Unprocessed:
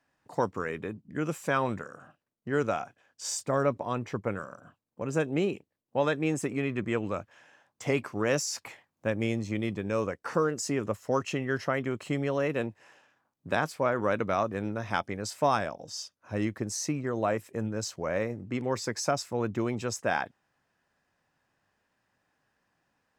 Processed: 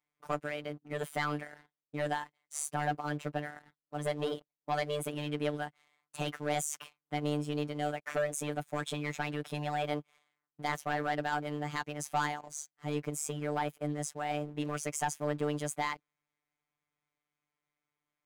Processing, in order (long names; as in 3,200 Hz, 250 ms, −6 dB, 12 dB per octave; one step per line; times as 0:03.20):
speed change +27%
leveller curve on the samples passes 2
phases set to zero 148 Hz
level −8.5 dB